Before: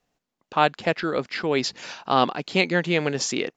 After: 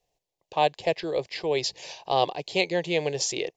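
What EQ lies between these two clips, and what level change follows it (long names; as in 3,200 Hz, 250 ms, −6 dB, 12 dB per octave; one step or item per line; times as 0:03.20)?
phaser with its sweep stopped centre 570 Hz, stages 4
0.0 dB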